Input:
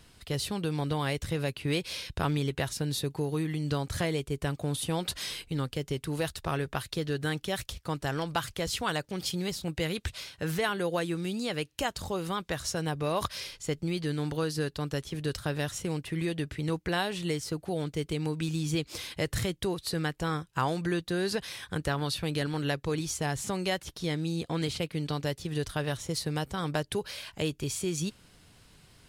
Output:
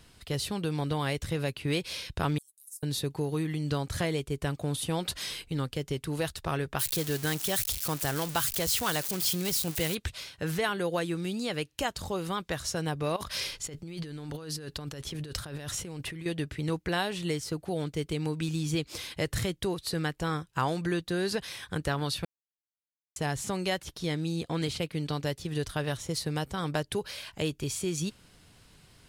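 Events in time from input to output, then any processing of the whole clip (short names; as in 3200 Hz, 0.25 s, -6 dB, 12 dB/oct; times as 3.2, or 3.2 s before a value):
2.38–2.83 inverse Chebyshev high-pass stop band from 2200 Hz, stop band 70 dB
6.79–9.95 switching spikes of -23.5 dBFS
13.16–16.26 negative-ratio compressor -38 dBFS
22.25–23.16 mute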